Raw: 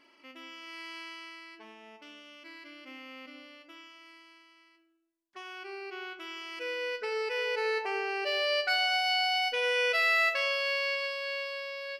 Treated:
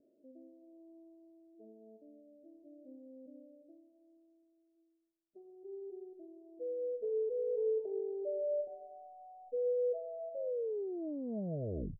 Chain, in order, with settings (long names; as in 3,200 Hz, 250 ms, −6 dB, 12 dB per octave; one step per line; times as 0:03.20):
turntable brake at the end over 1.65 s
Chebyshev low-pass with heavy ripple 650 Hz, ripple 3 dB